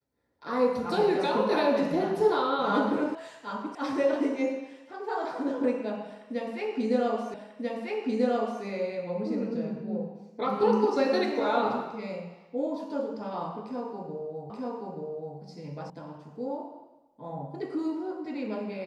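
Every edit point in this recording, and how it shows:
0:03.15: cut off before it has died away
0:03.75: cut off before it has died away
0:07.34: the same again, the last 1.29 s
0:14.50: the same again, the last 0.88 s
0:15.90: cut off before it has died away

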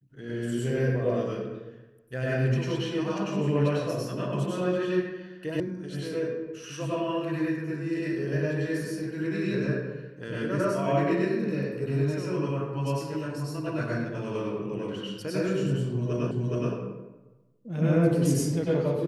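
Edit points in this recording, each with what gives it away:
0:05.60: cut off before it has died away
0:16.31: the same again, the last 0.42 s

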